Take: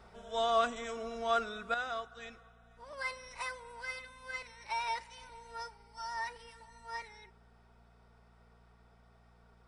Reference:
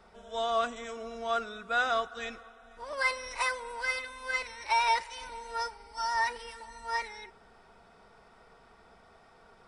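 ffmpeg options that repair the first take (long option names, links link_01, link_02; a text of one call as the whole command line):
ffmpeg -i in.wav -af "bandreject=frequency=58.7:width_type=h:width=4,bandreject=frequency=117.4:width_type=h:width=4,bandreject=frequency=176.1:width_type=h:width=4,bandreject=frequency=234.8:width_type=h:width=4,asetnsamples=nb_out_samples=441:pad=0,asendcmd='1.74 volume volume 9.5dB',volume=0dB" out.wav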